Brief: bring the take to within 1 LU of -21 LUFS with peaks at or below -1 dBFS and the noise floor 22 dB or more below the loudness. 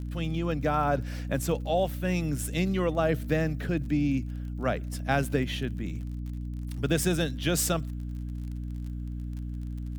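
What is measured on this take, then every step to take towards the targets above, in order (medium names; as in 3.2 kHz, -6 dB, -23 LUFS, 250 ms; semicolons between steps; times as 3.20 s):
tick rate 31 per s; hum 60 Hz; highest harmonic 300 Hz; hum level -32 dBFS; loudness -30.0 LUFS; peak level -12.0 dBFS; loudness target -21.0 LUFS
-> de-click; de-hum 60 Hz, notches 5; trim +9 dB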